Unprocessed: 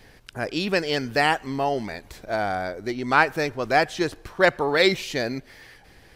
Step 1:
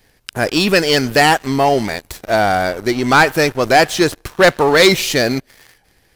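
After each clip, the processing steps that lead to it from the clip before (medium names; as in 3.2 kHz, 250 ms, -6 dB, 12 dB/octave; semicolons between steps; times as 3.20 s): treble shelf 6.9 kHz +10.5 dB; waveshaping leveller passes 3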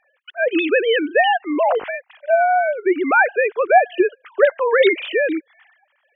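formants replaced by sine waves; compression 1.5:1, threshold -17 dBFS, peak gain reduction 5.5 dB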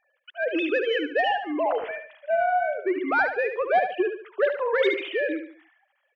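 saturation -4.5 dBFS, distortion -23 dB; feedback delay 73 ms, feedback 36%, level -8 dB; trim -7.5 dB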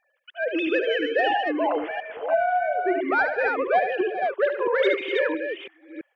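chunks repeated in reverse 334 ms, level -4.5 dB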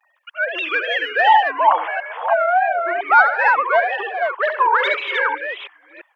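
wow and flutter 130 cents; resonant high-pass 990 Hz, resonance Q 4; trim +5.5 dB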